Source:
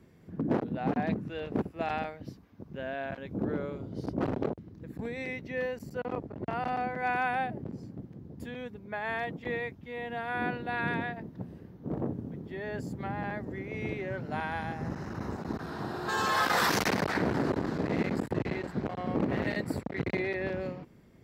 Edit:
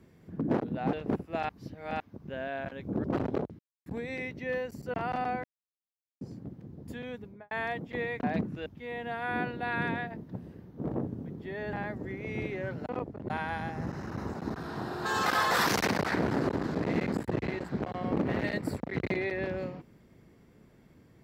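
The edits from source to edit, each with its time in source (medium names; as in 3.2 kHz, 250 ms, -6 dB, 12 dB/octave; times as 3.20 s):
0.93–1.39 s: move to 9.72 s
1.95–2.46 s: reverse
3.50–4.12 s: delete
4.67–4.94 s: mute
6.02–6.46 s: move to 14.33 s
6.96–7.73 s: mute
8.77–9.03 s: studio fade out
12.79–13.20 s: delete
16.29–16.54 s: reverse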